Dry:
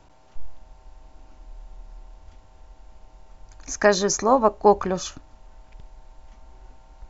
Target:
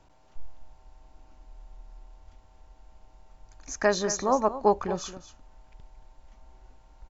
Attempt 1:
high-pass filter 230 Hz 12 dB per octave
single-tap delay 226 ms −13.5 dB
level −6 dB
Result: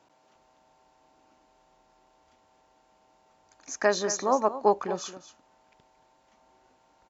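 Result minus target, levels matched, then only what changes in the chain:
250 Hz band −2.5 dB
remove: high-pass filter 230 Hz 12 dB per octave

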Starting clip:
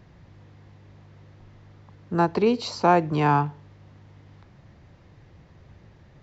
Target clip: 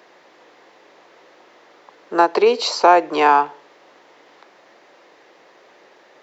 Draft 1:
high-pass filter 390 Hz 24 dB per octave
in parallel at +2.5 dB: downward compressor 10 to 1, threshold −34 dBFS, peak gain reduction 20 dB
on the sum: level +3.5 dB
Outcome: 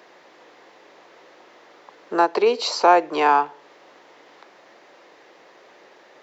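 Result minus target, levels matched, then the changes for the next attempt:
downward compressor: peak gain reduction +11 dB
change: downward compressor 10 to 1, threshold −22 dBFS, peak gain reduction 9 dB

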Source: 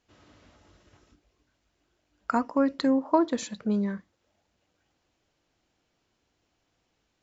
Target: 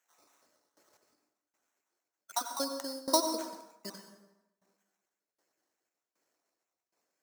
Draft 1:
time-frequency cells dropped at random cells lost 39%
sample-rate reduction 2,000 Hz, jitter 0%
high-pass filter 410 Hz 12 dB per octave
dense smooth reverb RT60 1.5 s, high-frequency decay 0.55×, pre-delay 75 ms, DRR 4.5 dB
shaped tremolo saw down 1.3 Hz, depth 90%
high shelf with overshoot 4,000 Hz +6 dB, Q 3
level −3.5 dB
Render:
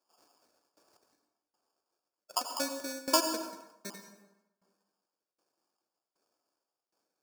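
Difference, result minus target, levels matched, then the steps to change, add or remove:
sample-rate reduction: distortion +8 dB
change: sample-rate reduction 4,800 Hz, jitter 0%

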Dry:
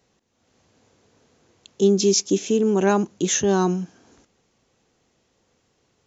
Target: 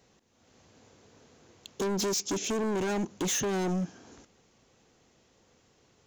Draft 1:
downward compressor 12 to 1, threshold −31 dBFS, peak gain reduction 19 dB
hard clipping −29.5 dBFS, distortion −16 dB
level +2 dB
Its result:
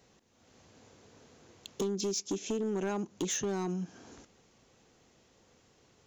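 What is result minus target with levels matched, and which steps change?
downward compressor: peak gain reduction +9.5 dB
change: downward compressor 12 to 1, threshold −20.5 dBFS, peak gain reduction 9.5 dB

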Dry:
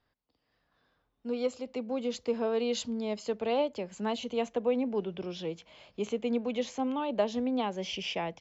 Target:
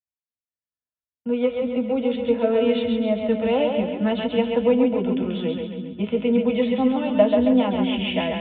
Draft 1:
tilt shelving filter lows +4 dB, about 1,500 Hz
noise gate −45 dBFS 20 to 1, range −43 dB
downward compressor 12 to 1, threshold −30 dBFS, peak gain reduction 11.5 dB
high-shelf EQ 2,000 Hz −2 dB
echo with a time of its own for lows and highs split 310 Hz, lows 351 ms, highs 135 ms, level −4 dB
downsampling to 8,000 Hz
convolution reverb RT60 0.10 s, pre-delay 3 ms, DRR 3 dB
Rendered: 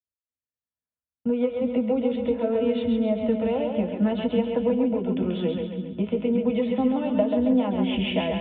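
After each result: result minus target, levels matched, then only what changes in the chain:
downward compressor: peak gain reduction +11.5 dB; 2,000 Hz band −2.5 dB
remove: downward compressor 12 to 1, threshold −30 dBFS, peak gain reduction 11.5 dB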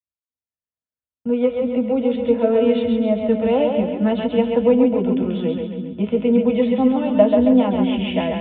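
2,000 Hz band −4.5 dB
remove: tilt shelving filter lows +4 dB, about 1,500 Hz

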